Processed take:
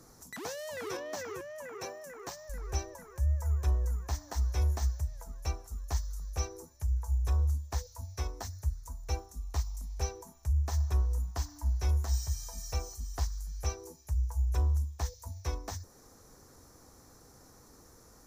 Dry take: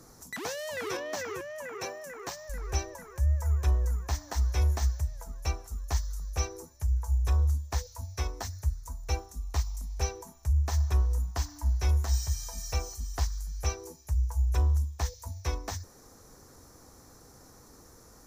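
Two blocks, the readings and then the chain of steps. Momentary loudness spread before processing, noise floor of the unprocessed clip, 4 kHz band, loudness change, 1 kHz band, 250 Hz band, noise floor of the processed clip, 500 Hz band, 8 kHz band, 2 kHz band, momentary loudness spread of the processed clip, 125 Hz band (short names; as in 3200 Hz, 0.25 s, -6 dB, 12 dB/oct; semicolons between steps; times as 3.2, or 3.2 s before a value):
11 LU, -55 dBFS, -4.5 dB, -3.0 dB, -4.0 dB, -3.0 dB, -58 dBFS, -3.0 dB, -4.0 dB, -6.0 dB, 12 LU, -3.0 dB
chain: dynamic EQ 2500 Hz, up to -4 dB, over -55 dBFS, Q 0.86; gain -3 dB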